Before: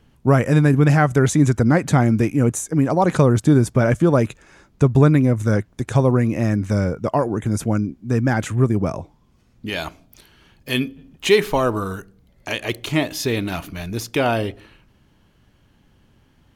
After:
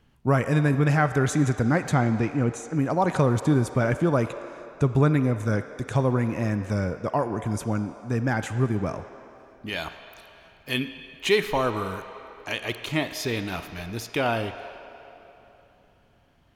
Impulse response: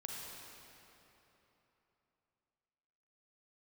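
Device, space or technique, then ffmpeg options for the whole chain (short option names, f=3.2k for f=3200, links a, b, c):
filtered reverb send: -filter_complex "[0:a]asettb=1/sr,asplit=3[a][b][c];[a]atrim=end=1.944[d];[b]atrim=start=1.94:end=2.74,asetpts=PTS-STARTPTS,afade=t=in:d=0.004:c=qsin,afade=t=out:st=0.796:d=0.004:c=qsin,lowpass=5.6k[e];[c]atrim=start=2.736[f];[d][e]acrossfade=d=0.004:c1=hsin:c2=qsin[g];[g][f]acrossfade=d=0.004:c1=qsin:c2=hsin,asplit=2[h][i];[i]highpass=560,lowpass=5.1k[j];[1:a]atrim=start_sample=2205[k];[j][k]afir=irnorm=-1:irlink=0,volume=-3.5dB[l];[h][l]amix=inputs=2:normalize=0,volume=-6.5dB"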